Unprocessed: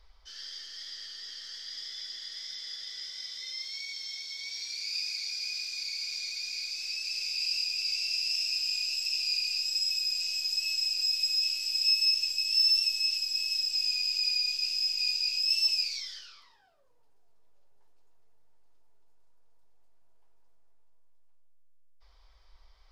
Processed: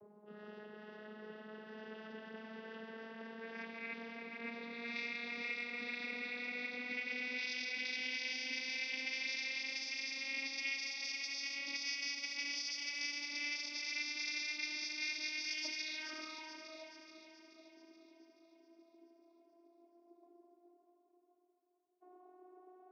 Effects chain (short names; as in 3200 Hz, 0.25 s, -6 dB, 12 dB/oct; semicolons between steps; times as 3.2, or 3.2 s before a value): vocoder on a gliding note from G#3, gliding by +10 st; low-pass opened by the level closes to 490 Hz, open at -24.5 dBFS; tilt shelf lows +4.5 dB, about 1300 Hz; compressor 2.5:1, threshold -46 dBFS, peak gain reduction 15 dB; air absorption 230 m; thinning echo 0.429 s, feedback 54%, high-pass 570 Hz, level -8 dB; gain +11 dB